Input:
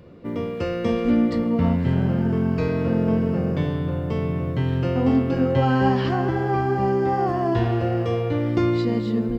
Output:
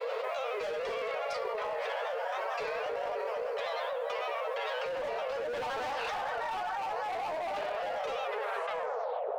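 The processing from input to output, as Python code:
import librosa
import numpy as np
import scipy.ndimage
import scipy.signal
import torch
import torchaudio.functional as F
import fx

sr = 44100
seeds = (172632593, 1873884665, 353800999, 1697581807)

y = fx.tape_stop_end(x, sr, length_s=1.22)
y = scipy.signal.sosfilt(scipy.signal.cheby1(10, 1.0, 480.0, 'highpass', fs=sr, output='sos'), y)
y = fx.granulator(y, sr, seeds[0], grain_ms=80.0, per_s=31.0, spray_ms=21.0, spread_st=3)
y = np.clip(y, -10.0 ** (-29.5 / 20.0), 10.0 ** (-29.5 / 20.0))
y = fx.rev_plate(y, sr, seeds[1], rt60_s=0.83, hf_ratio=0.6, predelay_ms=0, drr_db=11.5)
y = fx.env_flatten(y, sr, amount_pct=100)
y = y * 10.0 ** (-5.0 / 20.0)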